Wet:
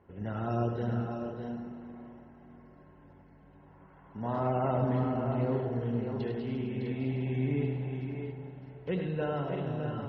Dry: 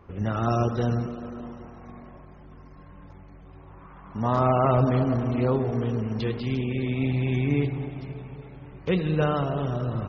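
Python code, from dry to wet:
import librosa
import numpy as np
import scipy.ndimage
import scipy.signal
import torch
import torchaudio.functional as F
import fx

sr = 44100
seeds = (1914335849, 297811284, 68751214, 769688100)

p1 = fx.air_absorb(x, sr, metres=200.0)
p2 = fx.notch_comb(p1, sr, f0_hz=1200.0)
p3 = p2 + fx.echo_multitap(p2, sr, ms=(76, 102, 458, 608, 654, 659), db=(-10.5, -7.5, -17.5, -7.5, -8.5, -17.0), dry=0)
y = p3 * librosa.db_to_amplitude(-7.5)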